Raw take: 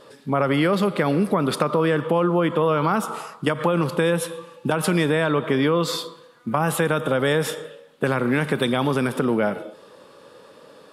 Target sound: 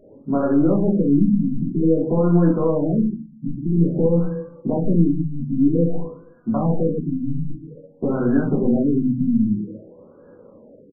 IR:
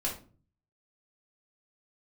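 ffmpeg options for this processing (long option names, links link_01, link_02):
-filter_complex "[0:a]firequalizer=gain_entry='entry(220,0);entry(1100,-14);entry(3900,13)':delay=0.05:min_phase=1,asplit=2[link_01][link_02];[link_02]aeval=exprs='clip(val(0),-1,0.0631)':channel_layout=same,volume=-9dB[link_03];[link_01][link_03]amix=inputs=2:normalize=0[link_04];[1:a]atrim=start_sample=2205[link_05];[link_04][link_05]afir=irnorm=-1:irlink=0,afftfilt=real='re*lt(b*sr/1024,270*pow(1700/270,0.5+0.5*sin(2*PI*0.51*pts/sr)))':imag='im*lt(b*sr/1024,270*pow(1700/270,0.5+0.5*sin(2*PI*0.51*pts/sr)))':win_size=1024:overlap=0.75,volume=-2.5dB"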